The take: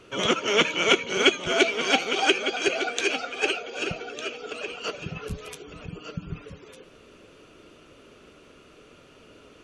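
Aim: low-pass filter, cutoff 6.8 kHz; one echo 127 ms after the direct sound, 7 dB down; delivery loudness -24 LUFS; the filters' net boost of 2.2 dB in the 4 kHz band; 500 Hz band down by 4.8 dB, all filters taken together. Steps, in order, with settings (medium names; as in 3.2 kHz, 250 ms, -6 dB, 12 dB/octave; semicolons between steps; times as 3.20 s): low-pass 6.8 kHz; peaking EQ 500 Hz -6.5 dB; peaking EQ 4 kHz +3.5 dB; delay 127 ms -7 dB; trim -1 dB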